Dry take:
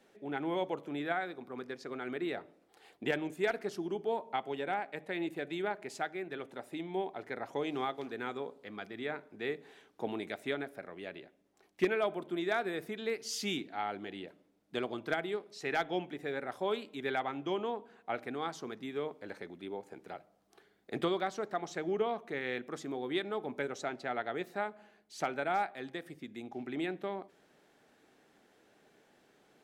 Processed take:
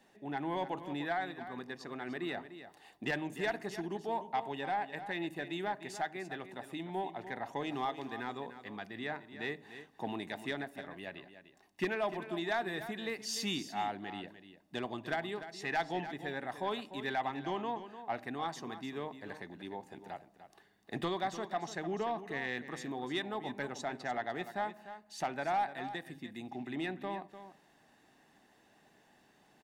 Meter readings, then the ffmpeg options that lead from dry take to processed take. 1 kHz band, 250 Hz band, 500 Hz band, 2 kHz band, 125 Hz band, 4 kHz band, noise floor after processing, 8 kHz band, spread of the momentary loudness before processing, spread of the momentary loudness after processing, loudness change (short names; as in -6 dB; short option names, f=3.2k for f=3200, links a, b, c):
+1.0 dB, -1.5 dB, -4.0 dB, -0.5 dB, +1.5 dB, +0.5 dB, -67 dBFS, +0.5 dB, 11 LU, 10 LU, -1.5 dB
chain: -af "aecho=1:1:1.1:0.49,asoftclip=type=tanh:threshold=-24dB,aecho=1:1:298:0.251"